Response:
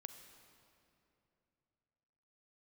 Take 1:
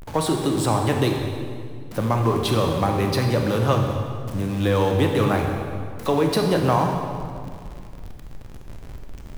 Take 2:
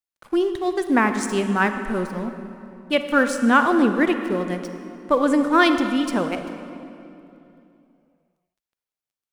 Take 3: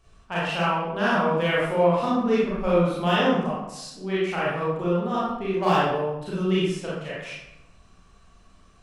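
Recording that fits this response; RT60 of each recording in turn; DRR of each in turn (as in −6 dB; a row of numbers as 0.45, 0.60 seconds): 2; 2.1, 2.9, 0.90 seconds; 2.5, 7.5, −8.5 decibels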